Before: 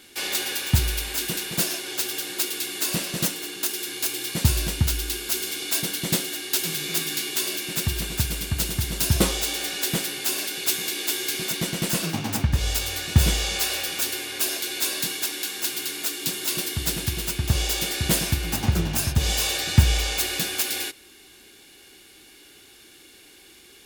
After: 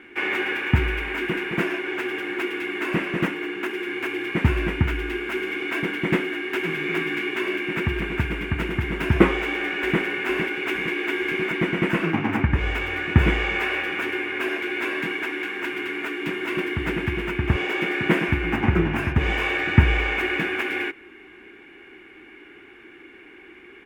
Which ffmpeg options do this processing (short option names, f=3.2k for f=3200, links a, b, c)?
-filter_complex "[0:a]asplit=2[a][b];[b]afade=t=in:st=9.37:d=0.01,afade=t=out:st=10.02:d=0.01,aecho=0:1:460|920|1380|1840|2300|2760|3220|3680:0.421697|0.253018|0.151811|0.0910864|0.0546519|0.0327911|0.0196747|0.0118048[c];[a][c]amix=inputs=2:normalize=0,asettb=1/sr,asplit=3[d][e][f];[d]atrim=end=17.564[g];[e]atrim=start=17.56:end=18.29,asetpts=PTS-STARTPTS,afade=t=in:d=0.004:c=qsin,afade=t=out:st=0.726:d=0.004:c=qsin,highpass=f=130:w=0.5412,highpass=f=130:w=1.3066[h];[f]atrim=start=18.286[i];[g][h]acrossfade=d=0.004:c1=hsin:c2=qsin[j];[j][i]acrossfade=d=0.004:c1=qsin:c2=hsin,firequalizer=gain_entry='entry(120,0);entry(350,11);entry(560,0);entry(940,7);entry(2200,10);entry(4100,-23);entry(12000,-27)':delay=0.05:min_phase=1"